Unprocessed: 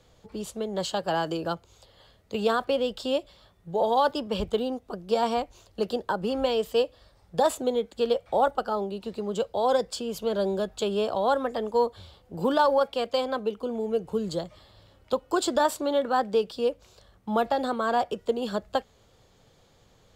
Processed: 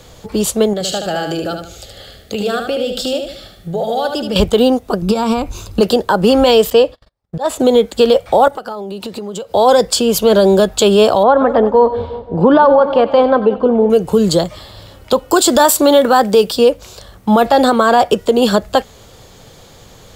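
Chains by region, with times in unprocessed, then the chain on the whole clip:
0.73–4.36 s: Butterworth band-stop 1 kHz, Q 2.6 + compression 2.5:1, threshold -40 dBFS + feedback delay 75 ms, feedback 37%, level -6 dB
5.02–5.81 s: compression 12:1, threshold -32 dBFS + bass shelf 460 Hz +7.5 dB + comb 0.8 ms, depth 44%
6.70–7.60 s: gate -53 dBFS, range -38 dB + slow attack 324 ms + low-pass 3.5 kHz 6 dB/octave
8.48–9.54 s: high-pass 99 Hz + compression 10:1, threshold -40 dBFS
11.23–13.90 s: low-pass 1.6 kHz + two-band feedback delay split 810 Hz, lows 177 ms, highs 93 ms, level -16 dB
15.31–16.57 s: treble shelf 7.5 kHz +8.5 dB + tape noise reduction on one side only decoder only
whole clip: treble shelf 7.5 kHz +8 dB; loudness maximiser +19.5 dB; trim -1 dB

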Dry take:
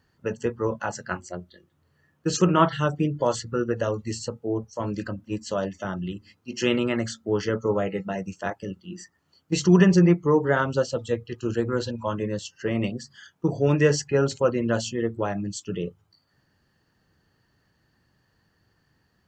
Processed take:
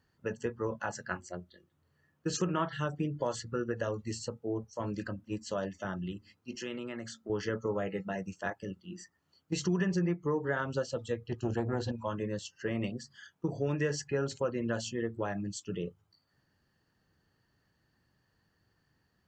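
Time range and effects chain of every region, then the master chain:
6.55–7.30 s: high-pass 120 Hz + compression 2:1, threshold -36 dBFS
11.27–11.92 s: bass shelf 460 Hz +8.5 dB + transformer saturation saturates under 470 Hz
whole clip: dynamic bell 1.7 kHz, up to +6 dB, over -51 dBFS, Q 7.6; compression 3:1, threshold -22 dBFS; trim -6.5 dB

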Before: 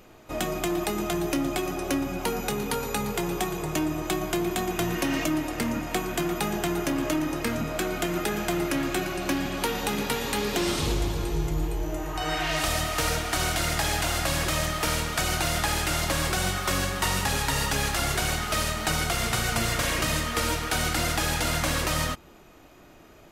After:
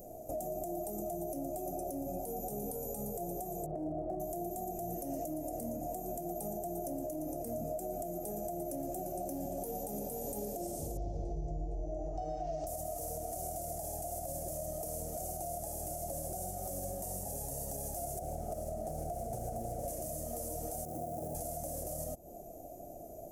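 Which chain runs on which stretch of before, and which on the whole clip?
3.66–4.20 s: low-pass 1.6 kHz 24 dB/octave + overload inside the chain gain 25 dB
10.97–12.67 s: steep low-pass 5.6 kHz + bass shelf 110 Hz +6 dB
18.19–19.88 s: treble shelf 2.4 kHz -11 dB + loudspeaker Doppler distortion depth 0.55 ms
20.85–21.35 s: one-bit delta coder 16 kbps, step -42 dBFS + high-pass 120 Hz + companded quantiser 4-bit
whole clip: FFT filter 420 Hz 0 dB, 700 Hz +13 dB, 1 kHz -25 dB, 1.8 kHz -27 dB, 3.8 kHz -25 dB, 6.1 kHz -1 dB, 11 kHz +10 dB; compression 6:1, threshold -35 dBFS; peak limiter -30 dBFS

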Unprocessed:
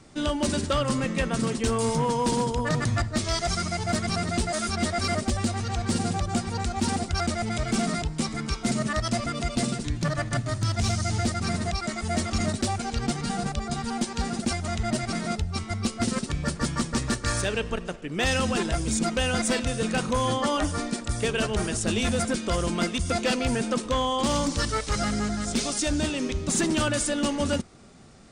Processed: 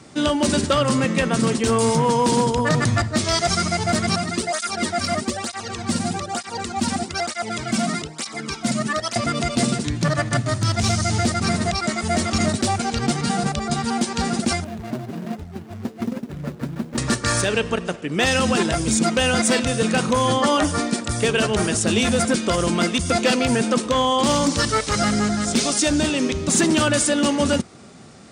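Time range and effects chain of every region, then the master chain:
4.16–9.16 s: peaking EQ 200 Hz -3.5 dB 2.2 oct + cancelling through-zero flanger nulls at 1.1 Hz, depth 2.6 ms
14.64–16.98 s: median filter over 41 samples + bass shelf 200 Hz -5 dB + flange 1.3 Hz, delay 3.1 ms, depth 5.4 ms, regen +48%
whole clip: high-pass 100 Hz 12 dB/octave; loudness maximiser +16 dB; trim -8.5 dB

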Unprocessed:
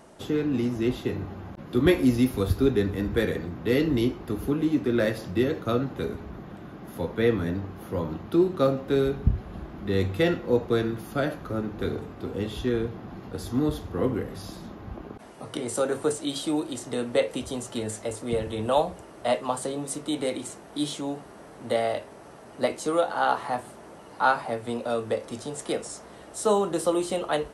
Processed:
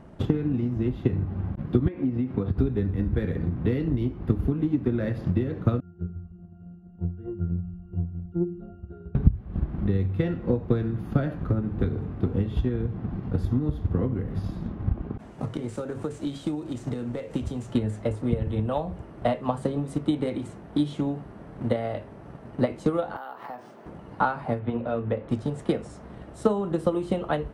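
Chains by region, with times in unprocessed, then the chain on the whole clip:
1.88–2.58 s: compression 4:1, threshold -24 dBFS + band-pass 150–2600 Hz + tape noise reduction on one side only decoder only
5.80–9.15 s: pitch-class resonator F, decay 0.61 s + frequency-shifting echo 211 ms, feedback 55%, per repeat -140 Hz, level -22.5 dB
15.18–17.73 s: CVSD coder 64 kbps + peaking EQ 7 kHz +7.5 dB 0.83 oct + compression 3:1, threshold -33 dBFS
23.16–23.86 s: high-pass 330 Hz + compression 5:1, threshold -34 dBFS + careless resampling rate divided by 3×, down none, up hold
24.59–25.29 s: low-pass 3.4 kHz 24 dB/octave + hum notches 60/120/180/240/300/360/420/480/540 Hz
whole clip: tone controls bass +14 dB, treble -15 dB; compression 4:1, threshold -22 dBFS; transient shaper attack +8 dB, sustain 0 dB; trim -2.5 dB

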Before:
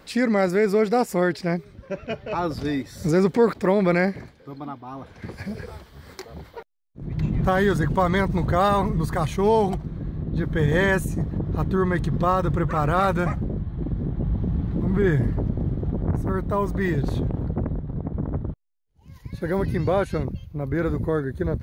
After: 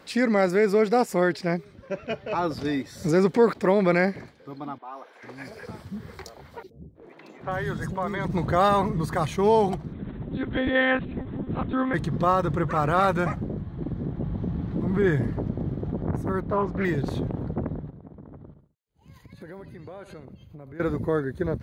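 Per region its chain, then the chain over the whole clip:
4.78–8.25 s: compression 2.5:1, threshold -25 dBFS + three bands offset in time mids, highs, lows 70/450 ms, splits 360/3700 Hz
9.93–11.94 s: treble shelf 2.7 kHz +8 dB + monotone LPC vocoder at 8 kHz 260 Hz
16.40–16.85 s: distance through air 170 m + loudspeaker Doppler distortion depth 0.3 ms
17.89–20.80 s: feedback delay 70 ms, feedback 33%, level -18 dB + compression 8:1, threshold -37 dBFS + Butterworth band-stop 5.5 kHz, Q 6.1
whole clip: high-pass 160 Hz 6 dB/octave; treble shelf 12 kHz -6.5 dB

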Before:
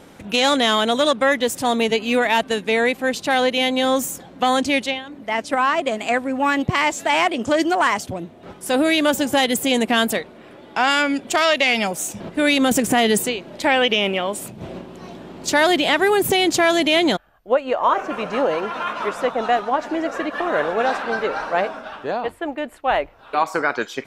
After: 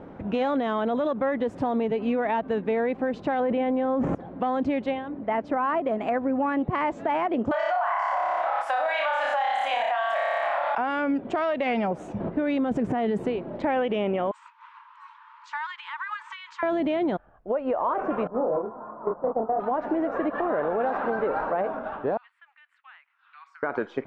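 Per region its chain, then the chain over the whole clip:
3.40–4.15 s: low-pass 2.2 kHz + level flattener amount 100%
7.51–10.78 s: elliptic high-pass 660 Hz + flutter echo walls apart 5 m, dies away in 0.77 s + level flattener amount 70%
14.31–16.63 s: brick-wall FIR band-pass 870–8600 Hz + compression 12:1, threshold -24 dBFS + delay 659 ms -19.5 dB
18.27–19.60 s: low-pass 1.1 kHz 24 dB/octave + gate -24 dBFS, range -13 dB + doubling 27 ms -3.5 dB
22.17–23.63 s: Bessel high-pass 2.4 kHz, order 8 + compression 2:1, threshold -49 dBFS
whole clip: low-pass 1.1 kHz 12 dB/octave; peak limiter -17 dBFS; compression 3:1, threshold -26 dBFS; trim +3 dB

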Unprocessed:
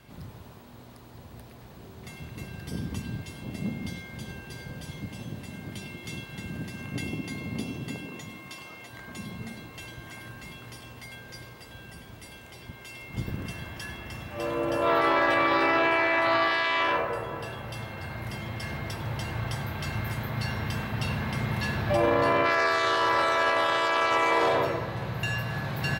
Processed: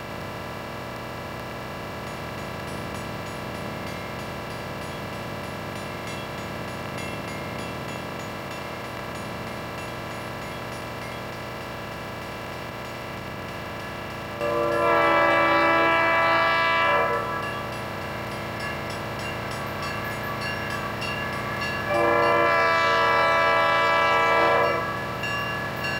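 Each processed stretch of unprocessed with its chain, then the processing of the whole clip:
11.28–14.41 s: compression 4:1, threshold -43 dBFS + loudspeaker Doppler distortion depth 0.22 ms
whole clip: spectral levelling over time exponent 0.2; spectral noise reduction 11 dB; peaking EQ 3.5 kHz -2 dB 0.25 oct

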